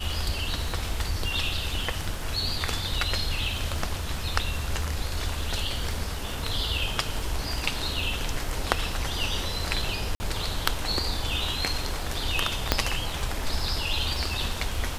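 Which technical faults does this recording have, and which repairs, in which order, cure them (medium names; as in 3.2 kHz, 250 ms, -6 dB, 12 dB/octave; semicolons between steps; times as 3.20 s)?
crackle 37 per s -35 dBFS
10.15–10.20 s: dropout 50 ms
12.72 s: pop -3 dBFS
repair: de-click; interpolate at 10.15 s, 50 ms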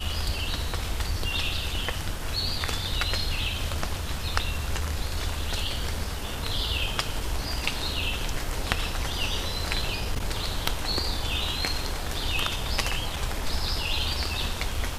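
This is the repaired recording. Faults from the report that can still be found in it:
nothing left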